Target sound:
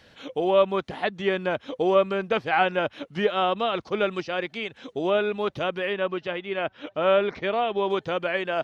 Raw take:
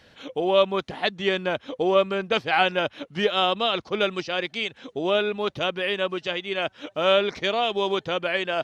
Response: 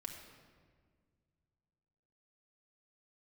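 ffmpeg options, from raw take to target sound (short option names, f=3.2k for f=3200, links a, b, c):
-filter_complex "[0:a]acrossover=split=2500[a][b];[b]acompressor=threshold=-42dB:ratio=4:attack=1:release=60[c];[a][c]amix=inputs=2:normalize=0,asettb=1/sr,asplit=3[d][e][f];[d]atrim=end=5.934[g];[e]atrim=start=5.93:end=7.9,asetpts=PTS-STARTPTS,afade=t=in:d=0.004:c=qsin,afade=t=out:st=1.966:d=0.004:c=qsin,lowpass=3.6k[h];[f]atrim=start=7.896[i];[g][h]acrossfade=d=0.004:c1=hsin:c2=qsin[j];[j][i]acrossfade=d=0.004:c1=qsin:c2=hsin"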